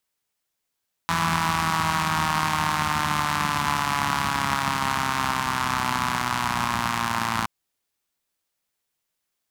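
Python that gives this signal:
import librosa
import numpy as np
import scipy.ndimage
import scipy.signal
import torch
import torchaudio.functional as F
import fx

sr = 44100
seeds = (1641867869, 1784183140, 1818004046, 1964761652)

y = fx.engine_four_rev(sr, seeds[0], length_s=6.37, rpm=5000, resonances_hz=(95.0, 180.0, 1000.0), end_rpm=3400)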